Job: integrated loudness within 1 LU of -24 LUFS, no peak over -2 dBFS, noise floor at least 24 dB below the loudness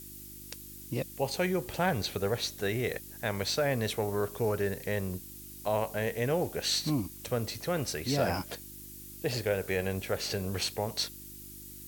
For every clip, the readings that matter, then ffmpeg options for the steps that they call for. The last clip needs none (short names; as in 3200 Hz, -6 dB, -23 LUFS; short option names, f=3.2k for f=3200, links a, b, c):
hum 50 Hz; harmonics up to 350 Hz; hum level -51 dBFS; noise floor -47 dBFS; noise floor target -56 dBFS; loudness -32.0 LUFS; peak -15.5 dBFS; loudness target -24.0 LUFS
-> -af "bandreject=f=50:t=h:w=4,bandreject=f=100:t=h:w=4,bandreject=f=150:t=h:w=4,bandreject=f=200:t=h:w=4,bandreject=f=250:t=h:w=4,bandreject=f=300:t=h:w=4,bandreject=f=350:t=h:w=4"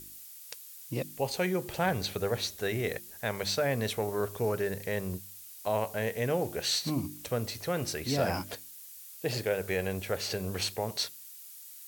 hum none; noise floor -48 dBFS; noise floor target -56 dBFS
-> -af "afftdn=nr=8:nf=-48"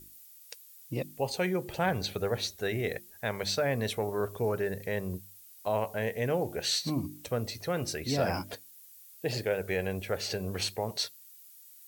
noise floor -54 dBFS; noise floor target -57 dBFS
-> -af "afftdn=nr=6:nf=-54"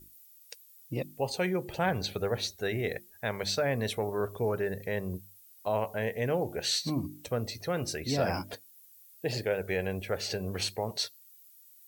noise floor -57 dBFS; loudness -32.5 LUFS; peak -16.0 dBFS; loudness target -24.0 LUFS
-> -af "volume=8.5dB"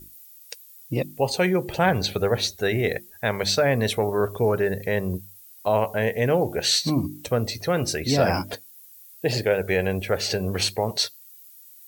loudness -24.0 LUFS; peak -7.5 dBFS; noise floor -48 dBFS